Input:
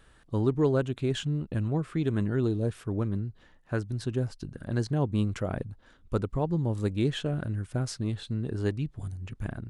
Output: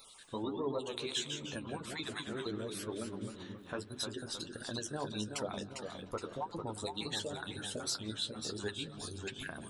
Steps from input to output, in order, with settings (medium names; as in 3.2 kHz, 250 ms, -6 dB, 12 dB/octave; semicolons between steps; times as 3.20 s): random holes in the spectrogram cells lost 25%; RIAA curve recording; hum notches 50/100/150/200/250/300/350/400 Hz; spectral gate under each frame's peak -25 dB strong; graphic EQ with 31 bands 125 Hz -7 dB, 1 kHz +3 dB, 4 kHz +10 dB; compression 2:1, threshold -42 dBFS, peak gain reduction 10 dB; saturation -22 dBFS, distortion -32 dB; flange 1.5 Hz, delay 7.1 ms, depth 7.3 ms, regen +35%; feedback echo behind a low-pass 176 ms, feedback 82%, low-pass 3.2 kHz, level -19 dB; ever faster or slower copies 82 ms, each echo -1 st, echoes 2, each echo -6 dB; trim +5.5 dB